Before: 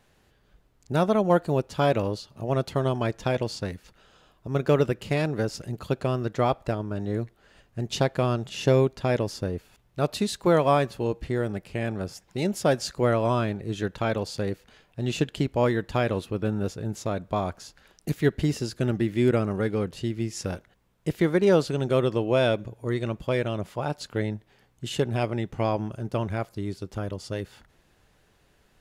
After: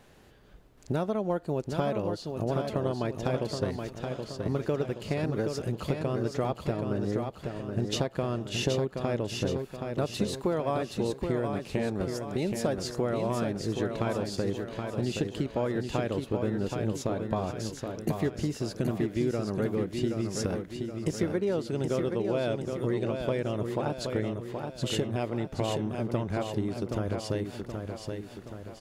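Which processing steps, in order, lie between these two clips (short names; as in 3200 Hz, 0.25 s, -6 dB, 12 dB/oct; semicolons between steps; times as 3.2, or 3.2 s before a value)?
bell 350 Hz +4.5 dB 2.4 oct; compressor 5:1, threshold -32 dBFS, peak gain reduction 18 dB; feedback echo 0.774 s, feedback 50%, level -5.5 dB; gain +4 dB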